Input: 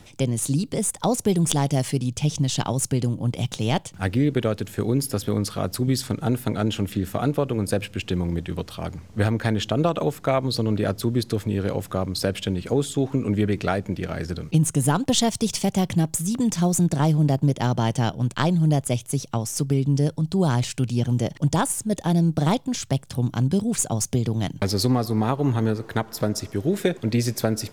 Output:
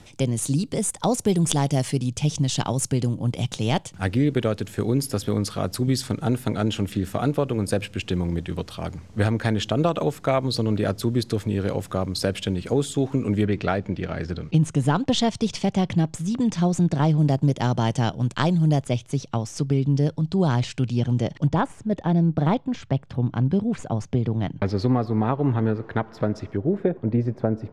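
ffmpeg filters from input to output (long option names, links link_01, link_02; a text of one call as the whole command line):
ffmpeg -i in.wav -af "asetnsamples=nb_out_samples=441:pad=0,asendcmd='13.45 lowpass f 4400;17.18 lowpass f 8100;18.84 lowpass f 4800;21.47 lowpass f 2300;26.57 lowpass f 1000',lowpass=11000" out.wav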